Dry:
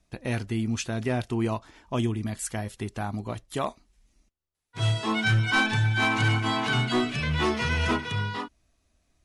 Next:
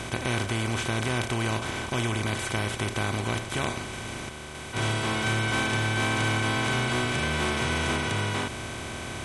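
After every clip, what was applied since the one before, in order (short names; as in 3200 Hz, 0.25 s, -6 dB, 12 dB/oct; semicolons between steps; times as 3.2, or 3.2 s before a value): per-bin compression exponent 0.2; gain -9 dB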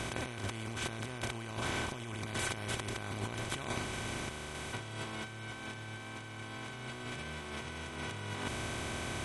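negative-ratio compressor -31 dBFS, ratio -0.5; gain -7.5 dB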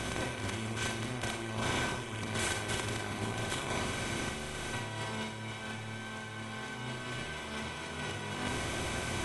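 Schroeder reverb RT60 0.53 s, combs from 32 ms, DRR 1.5 dB; gain +1 dB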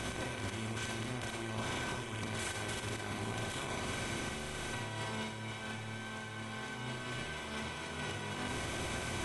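limiter -27 dBFS, peak gain reduction 10.5 dB; gain -1.5 dB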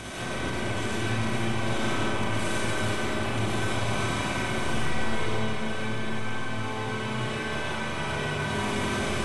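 digital reverb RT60 4.6 s, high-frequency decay 0.45×, pre-delay 60 ms, DRR -9 dB; gain +1 dB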